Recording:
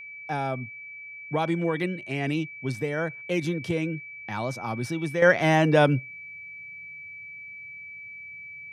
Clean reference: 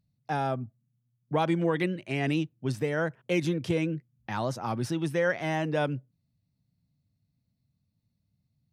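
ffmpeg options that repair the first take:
ffmpeg -i in.wav -af "bandreject=frequency=2300:width=30,asetnsamples=nb_out_samples=441:pad=0,asendcmd='5.22 volume volume -9dB',volume=0dB" out.wav

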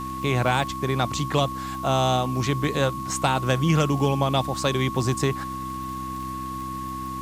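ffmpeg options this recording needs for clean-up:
ffmpeg -i in.wav -af "adeclick=threshold=4,bandreject=frequency=64.9:width_type=h:width=4,bandreject=frequency=129.8:width_type=h:width=4,bandreject=frequency=194.7:width_type=h:width=4,bandreject=frequency=259.6:width_type=h:width=4,bandreject=frequency=324.5:width_type=h:width=4,bandreject=frequency=1100:width=30,afwtdn=0.004" out.wav

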